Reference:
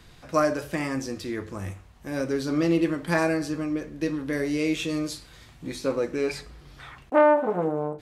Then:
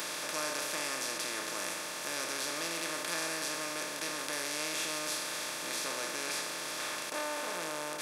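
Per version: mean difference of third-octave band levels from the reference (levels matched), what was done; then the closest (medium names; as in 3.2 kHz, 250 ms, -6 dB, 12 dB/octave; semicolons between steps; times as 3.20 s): 16.5 dB: spectral levelling over time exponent 0.2; peaking EQ 170 Hz +7 dB 1.6 oct; in parallel at -8 dB: saturation -13.5 dBFS, distortion -12 dB; on the sum: differentiator; trim -5 dB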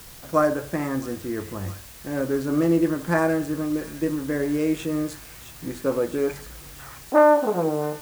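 5.0 dB: local Wiener filter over 9 samples; high-order bell 3.5 kHz -8.5 dB; feedback echo behind a high-pass 662 ms, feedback 71%, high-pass 3 kHz, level -7.5 dB; in parallel at -9 dB: word length cut 6-bit, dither triangular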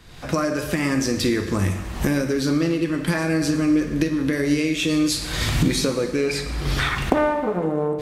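7.5 dB: recorder AGC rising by 46 dB/s; dynamic bell 740 Hz, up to -6 dB, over -35 dBFS, Q 0.92; Schroeder reverb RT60 1.4 s, DRR 8.5 dB; trim +1.5 dB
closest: second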